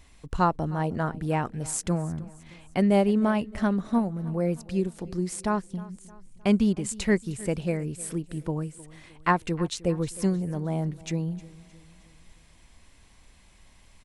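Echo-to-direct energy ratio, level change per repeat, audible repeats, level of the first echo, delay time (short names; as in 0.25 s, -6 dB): -19.0 dB, -6.5 dB, 3, -20.0 dB, 0.31 s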